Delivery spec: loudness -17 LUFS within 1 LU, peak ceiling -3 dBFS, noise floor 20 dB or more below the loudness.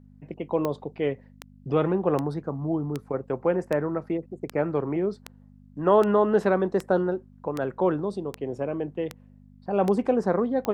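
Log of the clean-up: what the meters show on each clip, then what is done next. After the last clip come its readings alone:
clicks 14; hum 50 Hz; harmonics up to 250 Hz; hum level -45 dBFS; loudness -26.5 LUFS; peak -8.5 dBFS; loudness target -17.0 LUFS
-> de-click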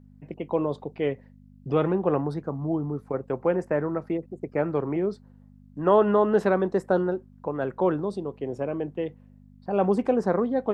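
clicks 0; hum 50 Hz; harmonics up to 250 Hz; hum level -45 dBFS
-> de-hum 50 Hz, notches 5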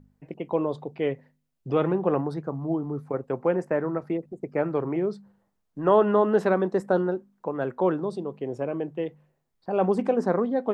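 hum none; loudness -26.5 LUFS; peak -8.5 dBFS; loudness target -17.0 LUFS
-> gain +9.5 dB; limiter -3 dBFS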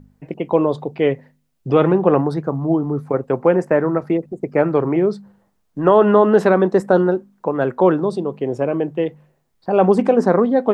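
loudness -17.5 LUFS; peak -3.0 dBFS; noise floor -66 dBFS

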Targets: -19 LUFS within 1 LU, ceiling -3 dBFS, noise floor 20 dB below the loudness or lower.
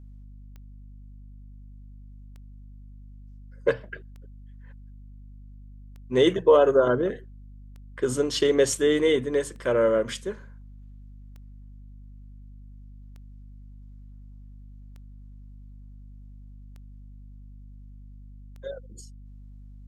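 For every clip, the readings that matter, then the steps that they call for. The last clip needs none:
clicks 11; hum 50 Hz; harmonics up to 250 Hz; hum level -42 dBFS; loudness -23.5 LUFS; peak -7.0 dBFS; loudness target -19.0 LUFS
-> de-click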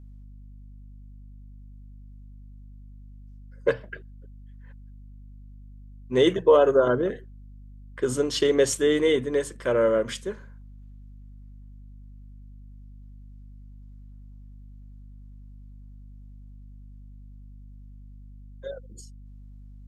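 clicks 0; hum 50 Hz; harmonics up to 250 Hz; hum level -42 dBFS
-> de-hum 50 Hz, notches 5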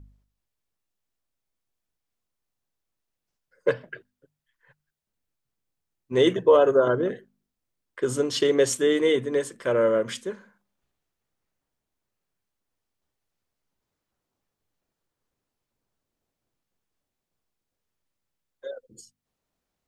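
hum none; loudness -23.0 LUFS; peak -7.5 dBFS; loudness target -19.0 LUFS
-> gain +4 dB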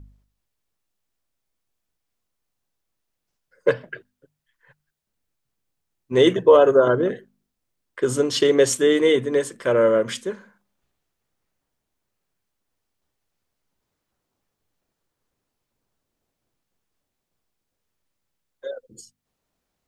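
loudness -19.0 LUFS; peak -3.5 dBFS; noise floor -80 dBFS

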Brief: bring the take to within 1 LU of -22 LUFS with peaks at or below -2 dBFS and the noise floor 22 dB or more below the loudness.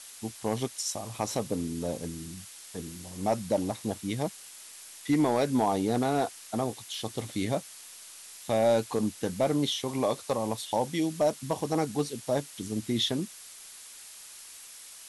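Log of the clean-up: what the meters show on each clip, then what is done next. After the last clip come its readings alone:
clipped 0.3%; flat tops at -17.5 dBFS; noise floor -48 dBFS; noise floor target -52 dBFS; loudness -30.0 LUFS; peak -17.5 dBFS; loudness target -22.0 LUFS
-> clip repair -17.5 dBFS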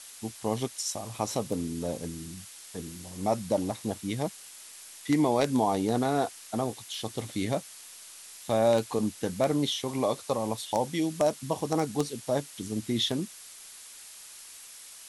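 clipped 0.0%; noise floor -48 dBFS; noise floor target -52 dBFS
-> noise print and reduce 6 dB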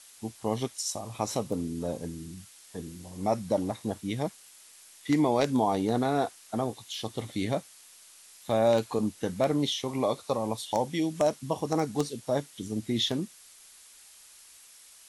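noise floor -54 dBFS; loudness -30.0 LUFS; peak -9.0 dBFS; loudness target -22.0 LUFS
-> gain +8 dB; limiter -2 dBFS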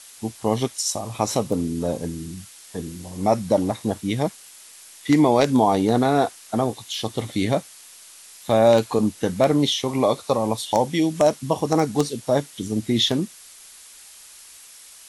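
loudness -22.0 LUFS; peak -2.0 dBFS; noise floor -46 dBFS

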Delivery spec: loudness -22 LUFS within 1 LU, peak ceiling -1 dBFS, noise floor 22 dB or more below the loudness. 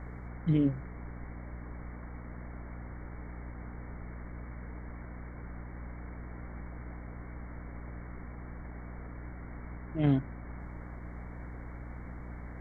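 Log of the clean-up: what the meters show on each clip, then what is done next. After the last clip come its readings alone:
hum 60 Hz; harmonics up to 300 Hz; hum level -41 dBFS; noise floor -45 dBFS; noise floor target -61 dBFS; loudness -39.0 LUFS; peak -14.5 dBFS; loudness target -22.0 LUFS
-> notches 60/120/180/240/300 Hz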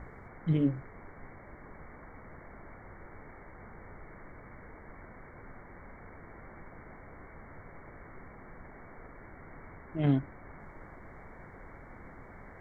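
hum none; noise floor -51 dBFS; noise floor target -55 dBFS
-> noise print and reduce 6 dB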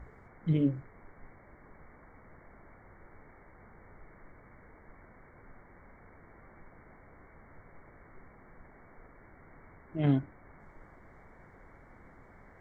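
noise floor -57 dBFS; loudness -31.0 LUFS; peak -15.5 dBFS; loudness target -22.0 LUFS
-> gain +9 dB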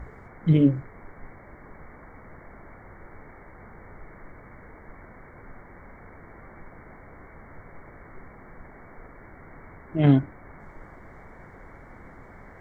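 loudness -22.0 LUFS; peak -6.5 dBFS; noise floor -48 dBFS

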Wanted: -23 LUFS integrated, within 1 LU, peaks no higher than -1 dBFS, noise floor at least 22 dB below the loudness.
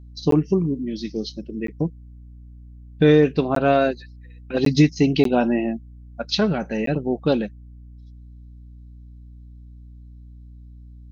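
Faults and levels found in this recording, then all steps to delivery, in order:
dropouts 6; longest dropout 13 ms; hum 60 Hz; harmonics up to 300 Hz; hum level -37 dBFS; loudness -21.0 LUFS; peak -4.0 dBFS; loudness target -23.0 LUFS
-> interpolate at 0.31/1.67/3.55/4.65/5.24/6.86, 13 ms; de-hum 60 Hz, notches 5; gain -2 dB

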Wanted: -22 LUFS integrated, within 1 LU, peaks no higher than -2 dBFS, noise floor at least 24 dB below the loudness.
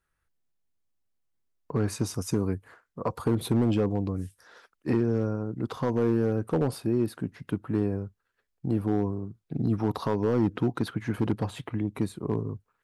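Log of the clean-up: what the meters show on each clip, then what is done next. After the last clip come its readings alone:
clipped 0.9%; flat tops at -17.5 dBFS; loudness -29.0 LUFS; peak -17.5 dBFS; loudness target -22.0 LUFS
-> clip repair -17.5 dBFS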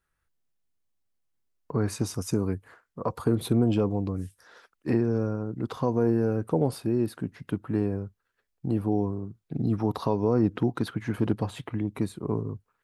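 clipped 0.0%; loudness -28.5 LUFS; peak -11.0 dBFS; loudness target -22.0 LUFS
-> gain +6.5 dB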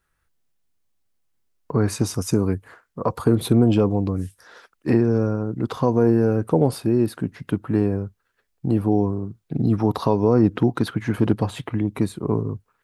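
loudness -22.0 LUFS; peak -4.5 dBFS; noise floor -73 dBFS

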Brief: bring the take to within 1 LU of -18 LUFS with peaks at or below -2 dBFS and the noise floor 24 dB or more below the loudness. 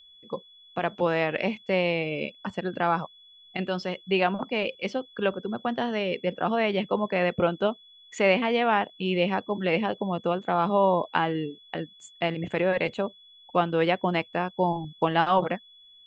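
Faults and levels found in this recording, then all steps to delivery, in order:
steady tone 3400 Hz; tone level -51 dBFS; loudness -27.0 LUFS; peak -7.0 dBFS; loudness target -18.0 LUFS
-> notch 3400 Hz, Q 30; gain +9 dB; limiter -2 dBFS

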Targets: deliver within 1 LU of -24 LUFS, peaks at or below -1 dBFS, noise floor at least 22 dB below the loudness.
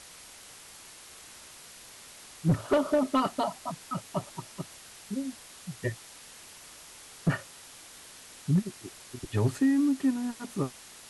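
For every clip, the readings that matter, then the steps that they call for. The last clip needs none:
clipped 0.4%; flat tops at -18.0 dBFS; noise floor -50 dBFS; noise floor target -53 dBFS; loudness -30.5 LUFS; peak -18.0 dBFS; loudness target -24.0 LUFS
-> clip repair -18 dBFS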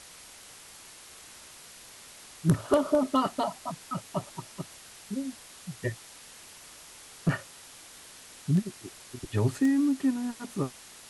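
clipped 0.0%; noise floor -50 dBFS; noise floor target -52 dBFS
-> denoiser 6 dB, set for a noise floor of -50 dBFS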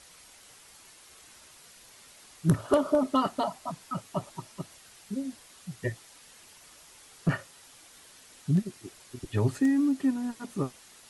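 noise floor -54 dBFS; loudness -30.0 LUFS; peak -10.0 dBFS; loudness target -24.0 LUFS
-> gain +6 dB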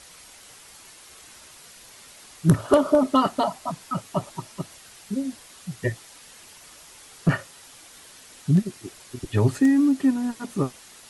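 loudness -24.0 LUFS; peak -4.0 dBFS; noise floor -48 dBFS

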